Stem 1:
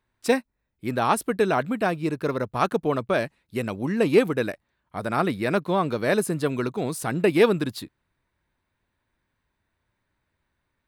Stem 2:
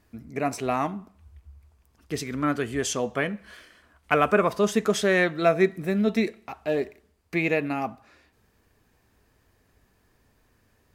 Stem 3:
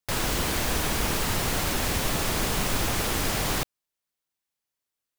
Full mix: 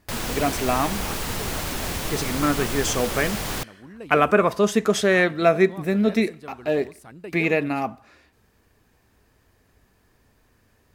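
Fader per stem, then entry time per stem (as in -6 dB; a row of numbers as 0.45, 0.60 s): -17.5, +3.0, -2.0 dB; 0.00, 0.00, 0.00 s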